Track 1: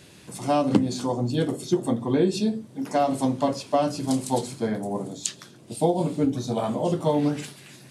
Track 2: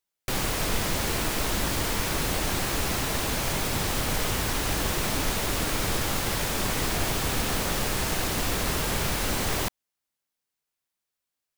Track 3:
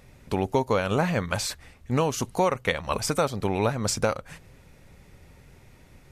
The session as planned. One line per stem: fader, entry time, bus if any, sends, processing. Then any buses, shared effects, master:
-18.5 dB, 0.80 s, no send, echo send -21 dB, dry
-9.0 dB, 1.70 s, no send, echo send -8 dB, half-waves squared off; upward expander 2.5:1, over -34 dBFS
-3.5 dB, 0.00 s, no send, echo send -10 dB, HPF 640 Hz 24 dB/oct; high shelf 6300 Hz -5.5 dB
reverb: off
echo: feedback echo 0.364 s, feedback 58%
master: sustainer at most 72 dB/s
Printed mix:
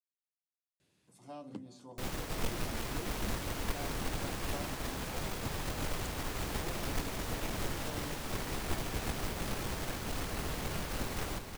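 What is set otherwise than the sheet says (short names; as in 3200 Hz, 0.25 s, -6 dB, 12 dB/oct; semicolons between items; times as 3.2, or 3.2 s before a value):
stem 1 -18.5 dB -> -25.0 dB; stem 3: muted; master: missing sustainer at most 72 dB/s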